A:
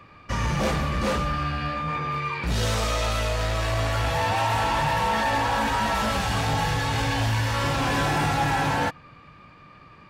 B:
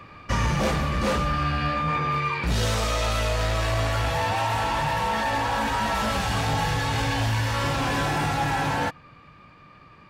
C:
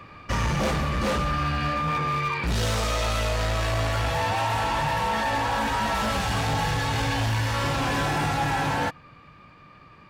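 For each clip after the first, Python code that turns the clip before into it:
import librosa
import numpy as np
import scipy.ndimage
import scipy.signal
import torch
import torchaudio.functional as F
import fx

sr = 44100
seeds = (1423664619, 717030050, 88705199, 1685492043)

y1 = fx.rider(x, sr, range_db=5, speed_s=0.5)
y2 = np.clip(10.0 ** (21.0 / 20.0) * y1, -1.0, 1.0) / 10.0 ** (21.0 / 20.0)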